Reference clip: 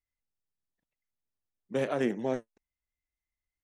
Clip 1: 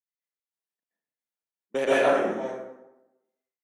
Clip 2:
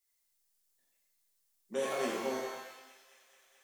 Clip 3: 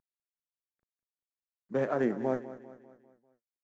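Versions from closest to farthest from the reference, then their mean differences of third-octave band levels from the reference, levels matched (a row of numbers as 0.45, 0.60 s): 3, 1, 2; 3.5, 8.0, 10.5 dB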